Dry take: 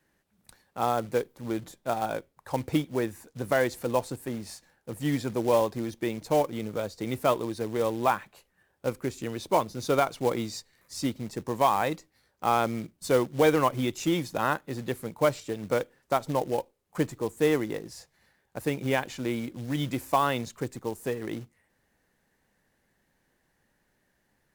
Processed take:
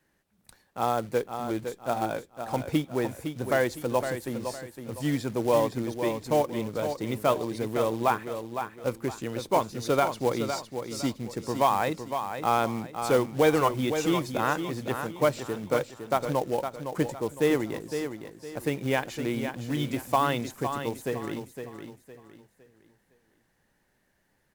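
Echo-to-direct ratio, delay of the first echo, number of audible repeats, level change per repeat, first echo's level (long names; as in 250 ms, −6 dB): −7.5 dB, 510 ms, 3, −9.5 dB, −8.0 dB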